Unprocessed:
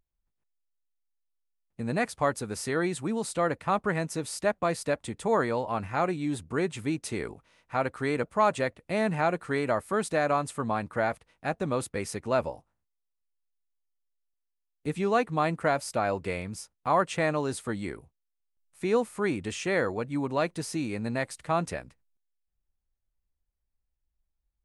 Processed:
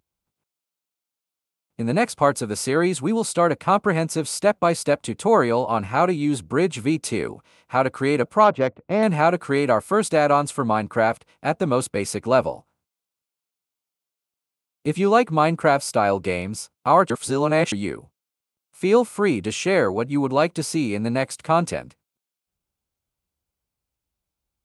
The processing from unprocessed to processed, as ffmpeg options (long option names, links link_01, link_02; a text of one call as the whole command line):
ffmpeg -i in.wav -filter_complex "[0:a]asettb=1/sr,asplit=3[link_01][link_02][link_03];[link_01]atrim=end=8.444[link_04];[link_02]atrim=start=8.44:end=9.03,asetpts=PTS-STARTPTS,afade=type=in:duration=0.004:curve=qsin,afade=type=out:start_time=0.586:duration=0.004:curve=qsin,adynamicsmooth=sensitivity=1:basefreq=1400[link_05];[link_03]atrim=start=9.026[link_06];[link_04][link_05]acrossfade=duration=0.004:curve1=hsin:curve2=qsin[link_07];[link_07][link_06]acrossfade=duration=0.004:curve1=qsin:curve2=hsin,asplit=3[link_08][link_09][link_10];[link_08]atrim=end=17.102[link_11];[link_09]atrim=start=17.098:end=17.722,asetpts=PTS-STARTPTS,areverse[link_12];[link_10]atrim=start=17.718[link_13];[link_11][link_12]acrossfade=duration=0.004:curve1=hsin:curve2=hsin[link_14];[link_14][link_13]acrossfade=duration=0.004:curve1=hsin:curve2=hsin,highpass=100,equalizer=frequency=1800:width=7.9:gain=-9.5,volume=8.5dB" out.wav